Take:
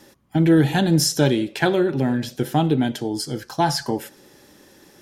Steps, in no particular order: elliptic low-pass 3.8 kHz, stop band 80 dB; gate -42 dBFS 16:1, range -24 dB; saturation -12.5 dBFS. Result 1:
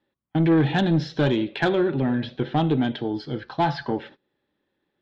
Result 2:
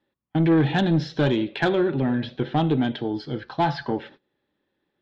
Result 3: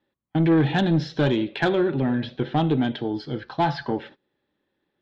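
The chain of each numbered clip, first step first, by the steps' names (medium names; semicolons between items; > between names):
elliptic low-pass > gate > saturation; gate > elliptic low-pass > saturation; elliptic low-pass > saturation > gate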